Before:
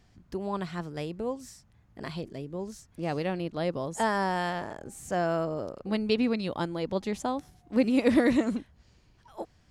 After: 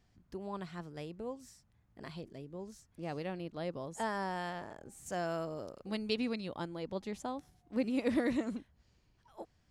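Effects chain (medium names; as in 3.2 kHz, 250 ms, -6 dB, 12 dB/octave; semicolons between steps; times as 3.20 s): 5.06–6.40 s: treble shelf 3.1 kHz +8.5 dB; trim -9 dB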